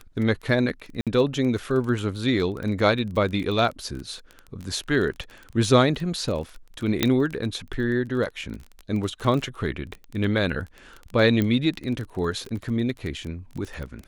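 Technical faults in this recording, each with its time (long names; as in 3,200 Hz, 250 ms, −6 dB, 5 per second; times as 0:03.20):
surface crackle 19 per second −30 dBFS
0:01.01–0:01.07: drop-out 57 ms
0:07.03: click −4 dBFS
0:11.42: click −12 dBFS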